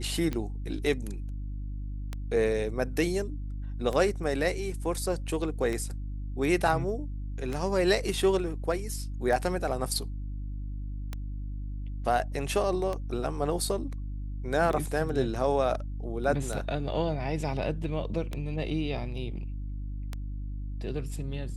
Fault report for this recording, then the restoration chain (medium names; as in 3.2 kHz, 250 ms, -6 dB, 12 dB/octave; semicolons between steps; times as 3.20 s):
hum 50 Hz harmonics 6 -35 dBFS
tick 33 1/3 rpm -19 dBFS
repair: de-click; de-hum 50 Hz, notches 6